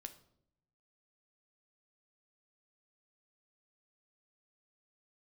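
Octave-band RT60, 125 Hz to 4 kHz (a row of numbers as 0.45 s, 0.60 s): 1.3 s, 1.0 s, 0.80 s, 0.60 s, 0.50 s, 0.50 s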